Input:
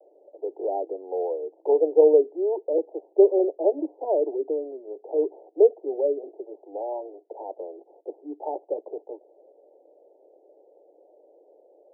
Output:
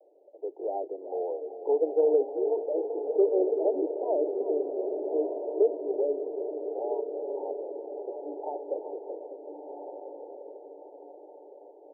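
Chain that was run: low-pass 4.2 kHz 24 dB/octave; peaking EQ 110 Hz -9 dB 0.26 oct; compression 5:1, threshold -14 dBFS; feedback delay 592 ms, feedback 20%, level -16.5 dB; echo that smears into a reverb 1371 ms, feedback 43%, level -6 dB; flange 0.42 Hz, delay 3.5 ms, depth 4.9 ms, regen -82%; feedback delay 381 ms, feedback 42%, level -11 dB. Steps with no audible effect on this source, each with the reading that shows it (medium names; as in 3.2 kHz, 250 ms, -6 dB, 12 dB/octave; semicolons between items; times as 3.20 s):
low-pass 4.2 kHz: input has nothing above 960 Hz; peaking EQ 110 Hz: input has nothing below 270 Hz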